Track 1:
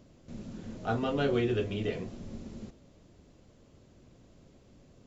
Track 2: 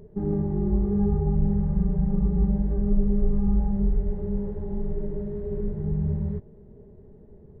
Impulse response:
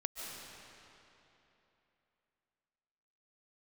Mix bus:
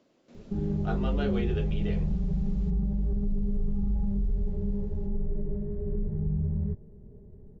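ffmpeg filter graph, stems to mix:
-filter_complex "[0:a]acrossover=split=230 6500:gain=0.0708 1 0.224[link_01][link_02][link_03];[link_01][link_02][link_03]amix=inputs=3:normalize=0,volume=-3.5dB[link_04];[1:a]lowshelf=frequency=270:gain=10.5,alimiter=limit=-13dB:level=0:latency=1:release=30,adelay=350,volume=-8.5dB[link_05];[link_04][link_05]amix=inputs=2:normalize=0"

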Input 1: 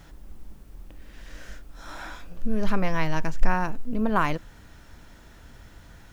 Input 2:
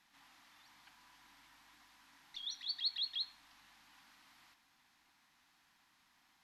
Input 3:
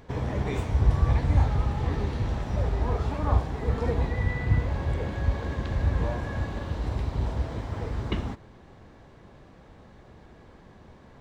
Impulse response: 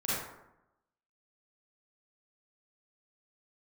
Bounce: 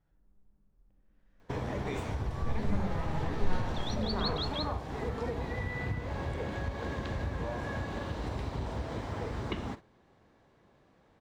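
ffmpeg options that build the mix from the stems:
-filter_complex "[0:a]lowpass=frequency=1100:poles=1,volume=-17.5dB,asplit=2[link_01][link_02];[link_02]volume=-3.5dB[link_03];[1:a]adelay=1400,volume=0dB[link_04];[2:a]lowshelf=frequency=110:gain=-10.5,acompressor=threshold=-32dB:ratio=6,adelay=1400,volume=1dB[link_05];[3:a]atrim=start_sample=2205[link_06];[link_03][link_06]afir=irnorm=-1:irlink=0[link_07];[link_01][link_04][link_05][link_07]amix=inputs=4:normalize=0,agate=range=-12dB:threshold=-43dB:ratio=16:detection=peak"

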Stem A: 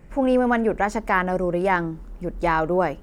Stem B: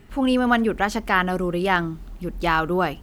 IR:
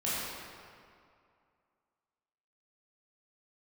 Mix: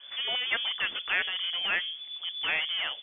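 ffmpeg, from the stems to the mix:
-filter_complex "[0:a]asoftclip=type=tanh:threshold=-25dB,volume=-2.5dB,asplit=2[link_01][link_02];[1:a]crystalizer=i=4:c=0,adynamicequalizer=threshold=0.0316:dfrequency=2300:dqfactor=0.7:tfrequency=2300:tqfactor=0.7:attack=5:release=100:ratio=0.375:range=3.5:mode=boostabove:tftype=highshelf,volume=-1,volume=-4dB[link_03];[link_02]apad=whole_len=133581[link_04];[link_03][link_04]sidechaincompress=threshold=-41dB:ratio=8:attack=10:release=1080[link_05];[link_01][link_05]amix=inputs=2:normalize=0,lowpass=frequency=3000:width_type=q:width=0.5098,lowpass=frequency=3000:width_type=q:width=0.6013,lowpass=frequency=3000:width_type=q:width=0.9,lowpass=frequency=3000:width_type=q:width=2.563,afreqshift=-3500"

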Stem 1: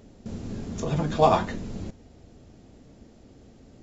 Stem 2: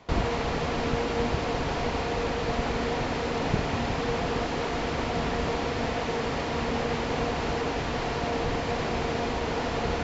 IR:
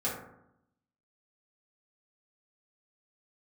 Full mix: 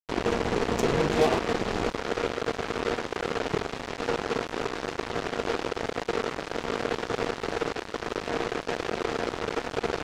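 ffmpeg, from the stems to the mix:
-filter_complex "[0:a]acompressor=threshold=-31dB:ratio=3,volume=1dB[link_01];[1:a]lowshelf=frequency=130:gain=-11.5,volume=-4dB[link_02];[link_01][link_02]amix=inputs=2:normalize=0,equalizer=frequency=390:width_type=o:width=0.86:gain=11.5,acrusher=bits=3:mix=0:aa=0.5"

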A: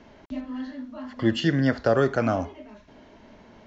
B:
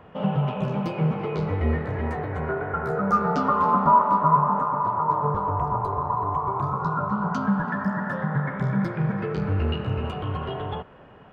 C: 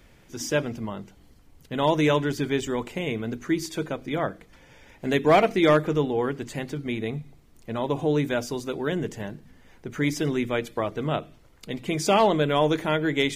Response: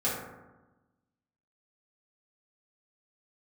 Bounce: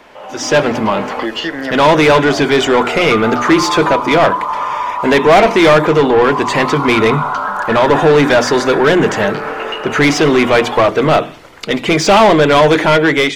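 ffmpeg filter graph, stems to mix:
-filter_complex "[0:a]volume=-5.5dB[link_01];[1:a]highpass=420,volume=-12.5dB[link_02];[2:a]acrossover=split=7300[link_03][link_04];[link_04]acompressor=threshold=-59dB:ratio=4:attack=1:release=60[link_05];[link_03][link_05]amix=inputs=2:normalize=0,bandreject=frequency=60:width_type=h:width=6,bandreject=frequency=120:width_type=h:width=6,bandreject=frequency=180:width_type=h:width=6,bandreject=frequency=240:width_type=h:width=6,bandreject=frequency=300:width_type=h:width=6,volume=-2.5dB[link_06];[link_01][link_02]amix=inputs=2:normalize=0,highpass=270,acompressor=threshold=-44dB:ratio=4,volume=0dB[link_07];[link_06][link_07]amix=inputs=2:normalize=0,dynaudnorm=framelen=190:gausssize=5:maxgain=15.5dB,asplit=2[link_08][link_09];[link_09]highpass=frequency=720:poles=1,volume=23dB,asoftclip=type=tanh:threshold=-1dB[link_10];[link_08][link_10]amix=inputs=2:normalize=0,lowpass=frequency=2800:poles=1,volume=-6dB"

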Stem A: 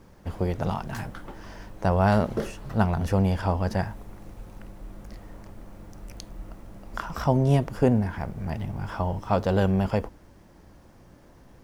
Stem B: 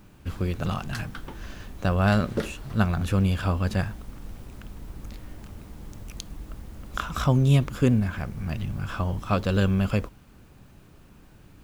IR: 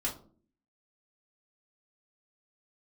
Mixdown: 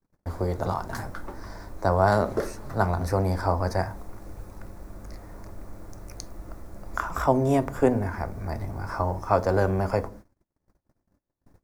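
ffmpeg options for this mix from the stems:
-filter_complex "[0:a]acrossover=split=180|3000[link_01][link_02][link_03];[link_01]acompressor=threshold=-42dB:ratio=1.5[link_04];[link_04][link_02][link_03]amix=inputs=3:normalize=0,volume=0.5dB,asplit=2[link_05][link_06];[link_06]volume=-12dB[link_07];[1:a]volume=-6.5dB,asplit=2[link_08][link_09];[link_09]volume=-21dB[link_10];[2:a]atrim=start_sample=2205[link_11];[link_07][link_10]amix=inputs=2:normalize=0[link_12];[link_12][link_11]afir=irnorm=-1:irlink=0[link_13];[link_05][link_08][link_13]amix=inputs=3:normalize=0,agate=range=-40dB:threshold=-43dB:ratio=16:detection=peak,equalizer=frequency=3000:width=2.3:gain=-13"

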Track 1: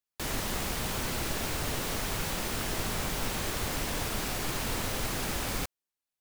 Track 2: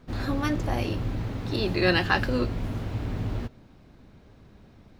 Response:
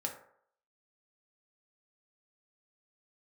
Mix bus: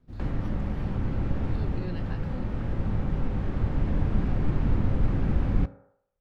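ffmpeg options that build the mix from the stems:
-filter_complex "[0:a]lowpass=1800,volume=-0.5dB,asplit=2[link_01][link_02];[link_02]volume=-7.5dB[link_03];[1:a]volume=-19dB,asplit=2[link_04][link_05];[link_05]apad=whole_len=273822[link_06];[link_01][link_06]sidechaincompress=threshold=-48dB:ratio=8:attack=16:release=1440[link_07];[2:a]atrim=start_sample=2205[link_08];[link_03][link_08]afir=irnorm=-1:irlink=0[link_09];[link_07][link_04][link_09]amix=inputs=3:normalize=0,lowshelf=frequency=330:gain=12,acrossover=split=320[link_10][link_11];[link_11]acompressor=threshold=-43dB:ratio=2.5[link_12];[link_10][link_12]amix=inputs=2:normalize=0"

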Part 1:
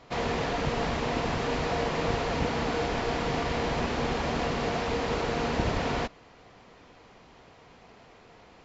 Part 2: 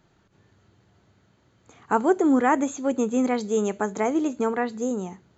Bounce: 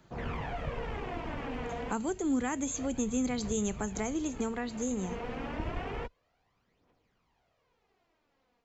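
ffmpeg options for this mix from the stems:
ffmpeg -i stem1.wav -i stem2.wav -filter_complex "[0:a]afwtdn=0.0158,dynaudnorm=framelen=110:gausssize=3:maxgain=6dB,aphaser=in_gain=1:out_gain=1:delay=4.3:decay=0.55:speed=0.29:type=triangular,volume=-12dB[link_01];[1:a]volume=1.5dB,asplit=2[link_02][link_03];[link_03]apad=whole_len=381358[link_04];[link_01][link_04]sidechaincompress=threshold=-27dB:ratio=8:attack=42:release=476[link_05];[link_05][link_02]amix=inputs=2:normalize=0,acrossover=split=180|3000[link_06][link_07][link_08];[link_07]acompressor=threshold=-37dB:ratio=4[link_09];[link_06][link_09][link_08]amix=inputs=3:normalize=0" out.wav

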